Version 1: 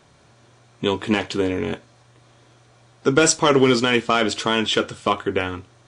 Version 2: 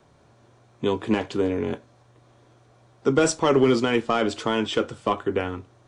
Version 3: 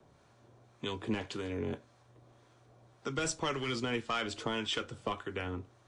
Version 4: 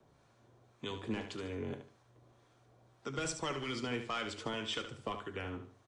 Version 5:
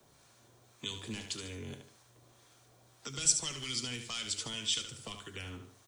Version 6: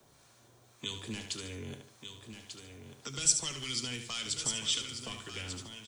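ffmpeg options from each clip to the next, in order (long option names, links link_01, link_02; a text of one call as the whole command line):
ffmpeg -i in.wav -filter_complex "[0:a]acrossover=split=240|1300|4700[link_01][link_02][link_03][link_04];[link_02]acontrast=81[link_05];[link_01][link_05][link_03][link_04]amix=inputs=4:normalize=0,lowshelf=frequency=180:gain=8.5,volume=-9dB" out.wav
ffmpeg -i in.wav -filter_complex "[0:a]acrossover=split=130|1400[link_01][link_02][link_03];[link_02]acompressor=threshold=-29dB:ratio=6[link_04];[link_01][link_04][link_03]amix=inputs=3:normalize=0,acrossover=split=880[link_05][link_06];[link_05]aeval=exprs='val(0)*(1-0.5/2+0.5/2*cos(2*PI*1.8*n/s))':channel_layout=same[link_07];[link_06]aeval=exprs='val(0)*(1-0.5/2-0.5/2*cos(2*PI*1.8*n/s))':channel_layout=same[link_08];[link_07][link_08]amix=inputs=2:normalize=0,volume=-3.5dB" out.wav
ffmpeg -i in.wav -af "aecho=1:1:73|146|219:0.355|0.106|0.0319,volume=-4dB" out.wav
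ffmpeg -i in.wav -filter_complex "[0:a]crystalizer=i=5.5:c=0,acrossover=split=210|3000[link_01][link_02][link_03];[link_02]acompressor=threshold=-47dB:ratio=6[link_04];[link_01][link_04][link_03]amix=inputs=3:normalize=0" out.wav
ffmpeg -i in.wav -af "aecho=1:1:1192:0.376,volume=1dB" out.wav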